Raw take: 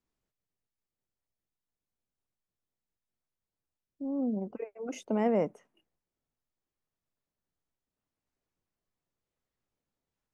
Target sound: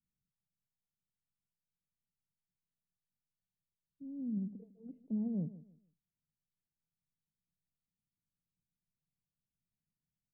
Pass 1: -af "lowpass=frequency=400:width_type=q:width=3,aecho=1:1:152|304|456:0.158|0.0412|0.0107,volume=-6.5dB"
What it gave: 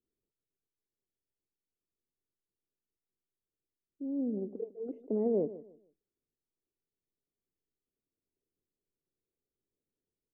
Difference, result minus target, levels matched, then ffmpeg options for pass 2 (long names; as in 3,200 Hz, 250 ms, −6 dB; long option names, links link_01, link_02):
500 Hz band +17.5 dB
-af "lowpass=frequency=170:width_type=q:width=3,aecho=1:1:152|304|456:0.158|0.0412|0.0107,volume=-6.5dB"